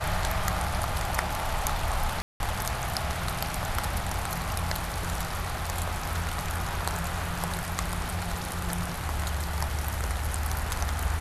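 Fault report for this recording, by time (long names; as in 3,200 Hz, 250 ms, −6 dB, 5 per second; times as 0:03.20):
0:02.22–0:02.40: drop-out 181 ms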